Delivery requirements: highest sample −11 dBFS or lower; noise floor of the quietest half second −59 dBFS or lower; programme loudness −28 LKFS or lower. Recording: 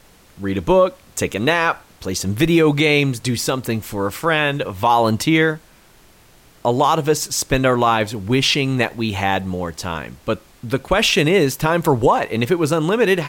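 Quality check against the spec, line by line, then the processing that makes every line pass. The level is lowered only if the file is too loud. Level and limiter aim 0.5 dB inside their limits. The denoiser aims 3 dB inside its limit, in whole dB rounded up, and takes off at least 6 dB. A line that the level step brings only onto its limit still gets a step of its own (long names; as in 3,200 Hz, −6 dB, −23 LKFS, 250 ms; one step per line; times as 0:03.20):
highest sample −5.0 dBFS: out of spec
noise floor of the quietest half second −49 dBFS: out of spec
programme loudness −18.5 LKFS: out of spec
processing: broadband denoise 6 dB, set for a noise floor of −49 dBFS
level −10 dB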